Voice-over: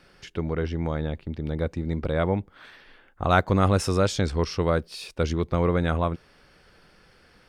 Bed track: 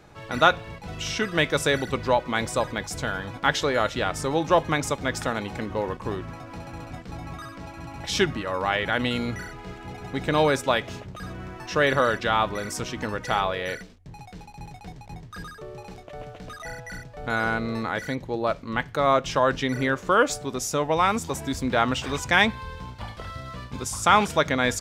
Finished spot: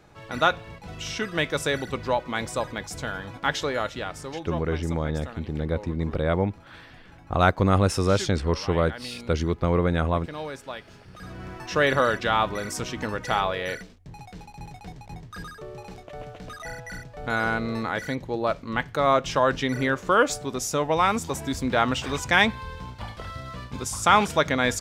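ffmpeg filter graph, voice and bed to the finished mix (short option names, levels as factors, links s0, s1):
-filter_complex "[0:a]adelay=4100,volume=1.06[s0];[1:a]volume=3.55,afade=t=out:st=3.65:d=0.85:silence=0.281838,afade=t=in:st=10.97:d=0.55:silence=0.199526[s1];[s0][s1]amix=inputs=2:normalize=0"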